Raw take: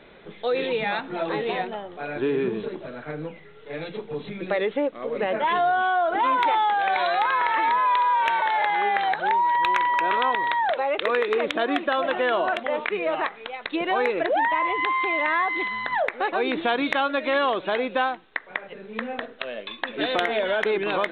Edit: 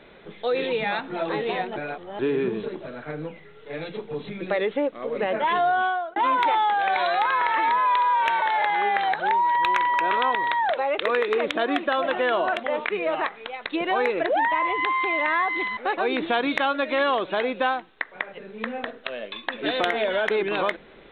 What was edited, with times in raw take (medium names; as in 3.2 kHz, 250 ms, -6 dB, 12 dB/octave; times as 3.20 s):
1.76–2.19 s: reverse
5.84–6.16 s: fade out
15.77–16.12 s: delete